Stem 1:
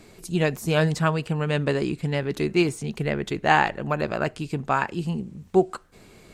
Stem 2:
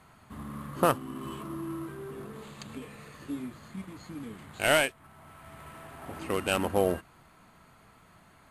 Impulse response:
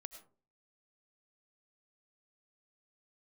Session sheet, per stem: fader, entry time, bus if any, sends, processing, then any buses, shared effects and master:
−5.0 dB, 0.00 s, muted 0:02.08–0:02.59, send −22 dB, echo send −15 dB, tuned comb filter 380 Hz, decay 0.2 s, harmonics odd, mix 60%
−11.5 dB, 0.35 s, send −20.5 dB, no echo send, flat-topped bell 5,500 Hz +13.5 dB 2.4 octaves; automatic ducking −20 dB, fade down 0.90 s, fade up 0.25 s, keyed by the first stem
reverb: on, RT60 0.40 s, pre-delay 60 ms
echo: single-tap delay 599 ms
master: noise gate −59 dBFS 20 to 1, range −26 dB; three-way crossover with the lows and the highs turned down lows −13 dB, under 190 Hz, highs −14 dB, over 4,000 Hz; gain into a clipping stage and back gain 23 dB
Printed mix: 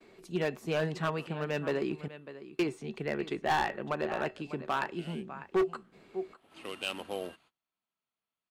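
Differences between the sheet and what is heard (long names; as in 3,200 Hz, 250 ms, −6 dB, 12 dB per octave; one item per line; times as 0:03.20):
stem 1 −5.0 dB → +1.0 dB
stem 2: send off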